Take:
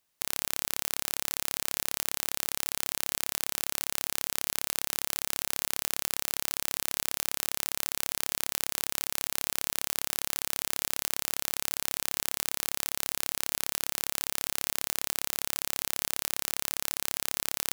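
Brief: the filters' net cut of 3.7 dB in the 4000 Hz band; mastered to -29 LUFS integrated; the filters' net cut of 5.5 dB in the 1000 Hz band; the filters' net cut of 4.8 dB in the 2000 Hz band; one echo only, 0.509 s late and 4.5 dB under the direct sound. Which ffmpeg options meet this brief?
-af "equalizer=f=1k:t=o:g=-6,equalizer=f=2k:t=o:g=-3.5,equalizer=f=4k:t=o:g=-3.5,aecho=1:1:509:0.596,volume=1dB"

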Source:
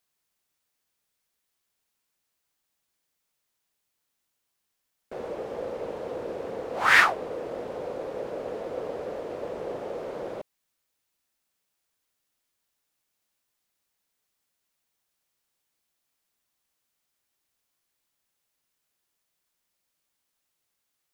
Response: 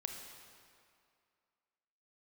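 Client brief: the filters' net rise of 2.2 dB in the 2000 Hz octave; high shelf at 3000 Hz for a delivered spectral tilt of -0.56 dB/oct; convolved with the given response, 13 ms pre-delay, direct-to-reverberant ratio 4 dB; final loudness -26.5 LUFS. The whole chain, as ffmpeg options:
-filter_complex "[0:a]equalizer=f=2k:t=o:g=4,highshelf=f=3k:g=-4.5,asplit=2[a][b];[1:a]atrim=start_sample=2205,adelay=13[c];[b][c]afir=irnorm=-1:irlink=0,volume=-3dB[d];[a][d]amix=inputs=2:normalize=0,volume=-1dB"

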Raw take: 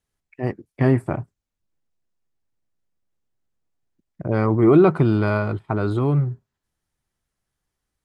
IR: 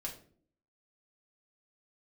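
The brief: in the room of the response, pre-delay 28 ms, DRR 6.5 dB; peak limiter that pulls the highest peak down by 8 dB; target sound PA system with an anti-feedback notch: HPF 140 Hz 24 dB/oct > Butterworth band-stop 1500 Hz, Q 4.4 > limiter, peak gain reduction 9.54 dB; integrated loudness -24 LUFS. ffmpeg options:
-filter_complex "[0:a]alimiter=limit=-12.5dB:level=0:latency=1,asplit=2[a][b];[1:a]atrim=start_sample=2205,adelay=28[c];[b][c]afir=irnorm=-1:irlink=0,volume=-5.5dB[d];[a][d]amix=inputs=2:normalize=0,highpass=f=140:w=0.5412,highpass=f=140:w=1.3066,asuperstop=centerf=1500:order=8:qfactor=4.4,volume=5.5dB,alimiter=limit=-14dB:level=0:latency=1"

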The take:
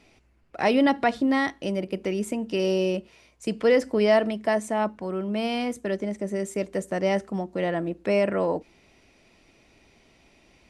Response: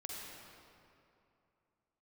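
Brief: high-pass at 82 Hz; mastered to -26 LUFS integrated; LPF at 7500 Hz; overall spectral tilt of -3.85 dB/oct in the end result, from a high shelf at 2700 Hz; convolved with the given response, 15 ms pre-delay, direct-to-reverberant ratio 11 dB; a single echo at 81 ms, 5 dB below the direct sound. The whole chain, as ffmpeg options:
-filter_complex "[0:a]highpass=82,lowpass=7.5k,highshelf=f=2.7k:g=6.5,aecho=1:1:81:0.562,asplit=2[a][b];[1:a]atrim=start_sample=2205,adelay=15[c];[b][c]afir=irnorm=-1:irlink=0,volume=-10dB[d];[a][d]amix=inputs=2:normalize=0,volume=-2.5dB"

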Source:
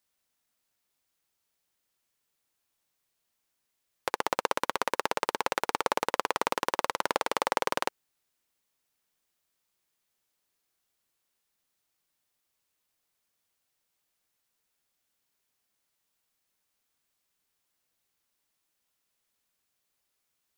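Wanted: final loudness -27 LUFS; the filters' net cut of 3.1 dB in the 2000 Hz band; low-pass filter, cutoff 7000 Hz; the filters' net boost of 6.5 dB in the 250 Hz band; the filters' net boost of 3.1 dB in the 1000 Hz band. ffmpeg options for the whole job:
-af "lowpass=7k,equalizer=f=250:t=o:g=8.5,equalizer=f=1k:t=o:g=4.5,equalizer=f=2k:t=o:g=-6,volume=2dB"

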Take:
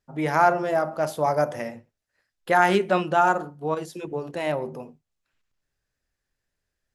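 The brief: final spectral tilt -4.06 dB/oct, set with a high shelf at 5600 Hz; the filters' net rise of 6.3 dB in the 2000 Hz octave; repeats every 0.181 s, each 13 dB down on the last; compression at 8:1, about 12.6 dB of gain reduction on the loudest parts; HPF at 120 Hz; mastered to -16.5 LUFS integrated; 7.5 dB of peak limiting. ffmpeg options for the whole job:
-af "highpass=120,equalizer=f=2k:t=o:g=9,highshelf=f=5.6k:g=-3.5,acompressor=threshold=-24dB:ratio=8,alimiter=limit=-21dB:level=0:latency=1,aecho=1:1:181|362|543:0.224|0.0493|0.0108,volume=16.5dB"

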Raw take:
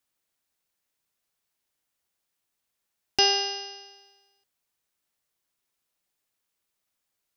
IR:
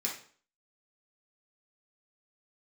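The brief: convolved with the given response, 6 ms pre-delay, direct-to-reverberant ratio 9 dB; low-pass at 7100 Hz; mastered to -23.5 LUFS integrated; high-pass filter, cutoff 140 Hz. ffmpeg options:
-filter_complex "[0:a]highpass=140,lowpass=7.1k,asplit=2[a][b];[1:a]atrim=start_sample=2205,adelay=6[c];[b][c]afir=irnorm=-1:irlink=0,volume=-12.5dB[d];[a][d]amix=inputs=2:normalize=0,volume=-0.5dB"

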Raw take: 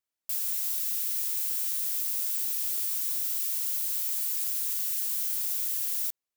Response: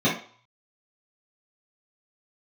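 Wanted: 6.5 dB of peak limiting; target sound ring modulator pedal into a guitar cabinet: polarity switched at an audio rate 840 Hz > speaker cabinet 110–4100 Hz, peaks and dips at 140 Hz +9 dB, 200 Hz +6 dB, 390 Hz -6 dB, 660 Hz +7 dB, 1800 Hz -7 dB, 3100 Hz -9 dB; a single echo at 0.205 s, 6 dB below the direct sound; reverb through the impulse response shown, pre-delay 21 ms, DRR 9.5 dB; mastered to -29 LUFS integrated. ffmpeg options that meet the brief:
-filter_complex "[0:a]alimiter=limit=-23.5dB:level=0:latency=1,aecho=1:1:205:0.501,asplit=2[a][b];[1:a]atrim=start_sample=2205,adelay=21[c];[b][c]afir=irnorm=-1:irlink=0,volume=-25.5dB[d];[a][d]amix=inputs=2:normalize=0,aeval=exprs='val(0)*sgn(sin(2*PI*840*n/s))':c=same,highpass=110,equalizer=f=140:t=q:w=4:g=9,equalizer=f=200:t=q:w=4:g=6,equalizer=f=390:t=q:w=4:g=-6,equalizer=f=660:t=q:w=4:g=7,equalizer=f=1.8k:t=q:w=4:g=-7,equalizer=f=3.1k:t=q:w=4:g=-9,lowpass=f=4.1k:w=0.5412,lowpass=f=4.1k:w=1.3066,volume=20.5dB"

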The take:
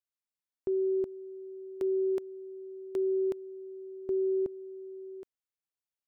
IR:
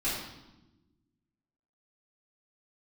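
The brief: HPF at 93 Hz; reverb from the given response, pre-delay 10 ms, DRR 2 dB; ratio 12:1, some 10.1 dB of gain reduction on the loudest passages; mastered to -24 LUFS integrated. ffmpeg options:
-filter_complex "[0:a]highpass=93,acompressor=threshold=-37dB:ratio=12,asplit=2[a][b];[1:a]atrim=start_sample=2205,adelay=10[c];[b][c]afir=irnorm=-1:irlink=0,volume=-9.5dB[d];[a][d]amix=inputs=2:normalize=0,volume=13.5dB"

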